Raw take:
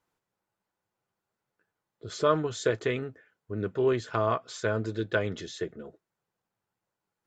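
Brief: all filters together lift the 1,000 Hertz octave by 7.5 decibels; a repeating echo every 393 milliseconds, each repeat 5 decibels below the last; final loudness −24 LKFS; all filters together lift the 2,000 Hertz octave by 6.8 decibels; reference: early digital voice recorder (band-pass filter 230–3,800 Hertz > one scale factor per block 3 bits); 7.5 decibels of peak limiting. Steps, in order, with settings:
parametric band 1,000 Hz +7 dB
parametric band 2,000 Hz +6.5 dB
brickwall limiter −13 dBFS
band-pass filter 230–3,800 Hz
repeating echo 393 ms, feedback 56%, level −5 dB
one scale factor per block 3 bits
level +3 dB

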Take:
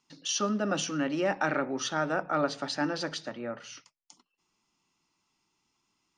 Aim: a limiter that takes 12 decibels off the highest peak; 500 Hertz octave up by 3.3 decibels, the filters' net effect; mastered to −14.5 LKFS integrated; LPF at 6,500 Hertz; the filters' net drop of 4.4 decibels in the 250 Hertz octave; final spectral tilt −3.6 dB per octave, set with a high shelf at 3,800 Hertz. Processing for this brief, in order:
low-pass filter 6,500 Hz
parametric band 250 Hz −8 dB
parametric band 500 Hz +6 dB
high-shelf EQ 3,800 Hz −6.5 dB
level +21.5 dB
brickwall limiter −4.5 dBFS

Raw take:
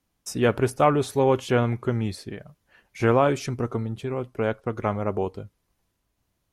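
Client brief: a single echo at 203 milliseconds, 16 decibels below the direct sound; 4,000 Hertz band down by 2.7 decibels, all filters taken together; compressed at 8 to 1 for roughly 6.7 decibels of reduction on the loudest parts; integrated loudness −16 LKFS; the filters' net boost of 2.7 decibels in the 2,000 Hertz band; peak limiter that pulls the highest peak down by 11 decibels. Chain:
parametric band 2,000 Hz +5 dB
parametric band 4,000 Hz −6 dB
downward compressor 8 to 1, threshold −21 dBFS
brickwall limiter −23 dBFS
single-tap delay 203 ms −16 dB
level +17.5 dB

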